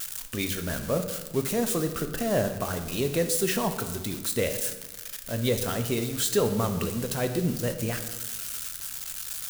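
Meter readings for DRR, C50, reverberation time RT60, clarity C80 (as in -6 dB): 7.0 dB, 9.5 dB, 1.2 s, 11.0 dB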